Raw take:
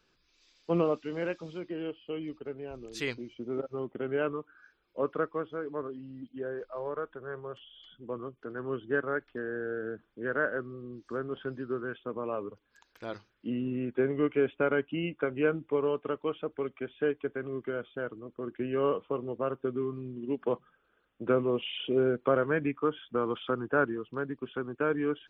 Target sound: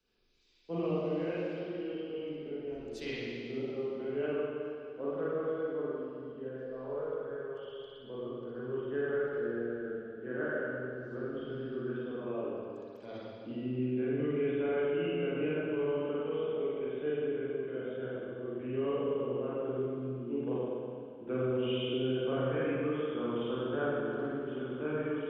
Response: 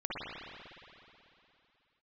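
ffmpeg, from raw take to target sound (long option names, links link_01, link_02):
-filter_complex "[1:a]atrim=start_sample=2205,asetrate=57330,aresample=44100[link_01];[0:a][link_01]afir=irnorm=-1:irlink=0,acrossover=split=180|730|2500[link_02][link_03][link_04][link_05];[link_03]alimiter=limit=-22.5dB:level=0:latency=1[link_06];[link_04]equalizer=frequency=1200:width_type=o:width=1.6:gain=-10[link_07];[link_02][link_06][link_07][link_05]amix=inputs=4:normalize=0,volume=-4.5dB"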